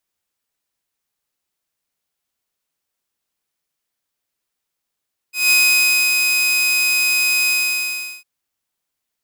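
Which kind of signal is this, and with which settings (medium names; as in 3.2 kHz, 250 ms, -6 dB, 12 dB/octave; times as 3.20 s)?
ADSR saw 2.51 kHz, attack 175 ms, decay 608 ms, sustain -4 dB, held 2.16 s, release 744 ms -8 dBFS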